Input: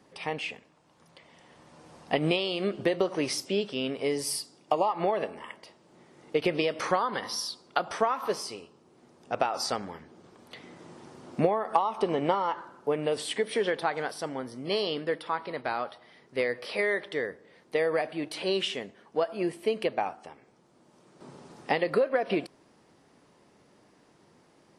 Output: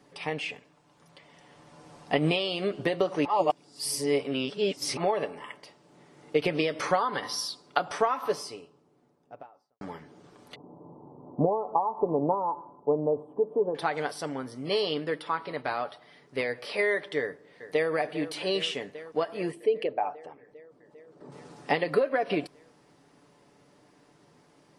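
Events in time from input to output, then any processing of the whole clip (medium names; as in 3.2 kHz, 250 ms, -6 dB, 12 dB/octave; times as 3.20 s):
3.25–4.97 s: reverse
8.03–9.81 s: studio fade out
10.55–13.75 s: elliptic low-pass 990 Hz, stop band 50 dB
17.20–17.91 s: echo throw 400 ms, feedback 80%, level -12.5 dB
19.51–21.32 s: resonances exaggerated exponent 1.5
whole clip: comb 6.9 ms, depth 42%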